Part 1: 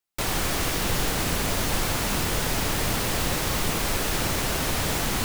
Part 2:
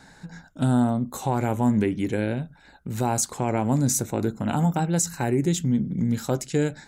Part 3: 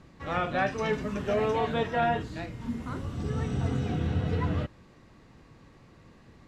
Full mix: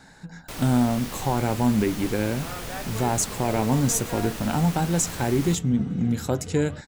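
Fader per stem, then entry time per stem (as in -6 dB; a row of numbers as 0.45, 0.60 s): -10.0, 0.0, -9.0 dB; 0.30, 0.00, 2.15 s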